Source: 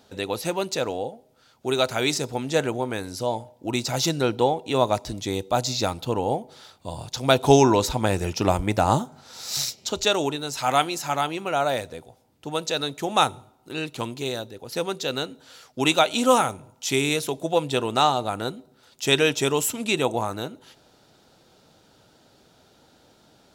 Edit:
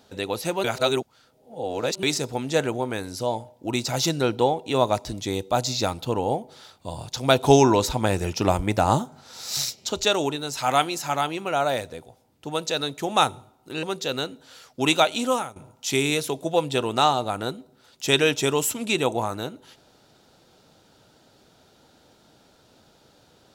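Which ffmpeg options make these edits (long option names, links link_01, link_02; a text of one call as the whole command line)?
ffmpeg -i in.wav -filter_complex "[0:a]asplit=5[link_01][link_02][link_03][link_04][link_05];[link_01]atrim=end=0.642[link_06];[link_02]atrim=start=0.638:end=2.032,asetpts=PTS-STARTPTS,areverse[link_07];[link_03]atrim=start=2.028:end=13.832[link_08];[link_04]atrim=start=14.818:end=16.55,asetpts=PTS-STARTPTS,afade=type=out:start_time=1.202:duration=0.53:silence=0.141254[link_09];[link_05]atrim=start=16.55,asetpts=PTS-STARTPTS,afade=type=in:duration=0.004:curve=hsin:silence=0.141254[link_10];[link_06][link_07]acrossfade=duration=0.004:curve1=hsin:curve2=hsin[link_11];[link_11][link_08]acrossfade=duration=0.004:curve1=hsin:curve2=hsin[link_12];[link_09][link_10]concat=n=2:v=0:a=1[link_13];[link_12][link_13]acrossfade=duration=0.004:curve1=hsin:curve2=hsin" out.wav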